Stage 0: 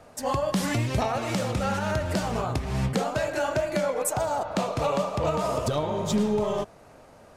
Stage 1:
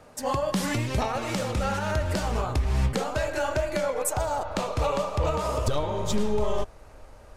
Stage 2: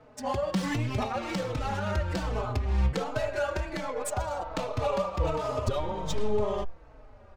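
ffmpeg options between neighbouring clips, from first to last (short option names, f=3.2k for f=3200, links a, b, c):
-af "bandreject=f=690:w=12,asubboost=boost=11.5:cutoff=50"
-filter_complex "[0:a]adynamicsmooth=sensitivity=7:basefreq=3.3k,asplit=2[a][b];[b]adelay=4.1,afreqshift=-1.3[c];[a][c]amix=inputs=2:normalize=1"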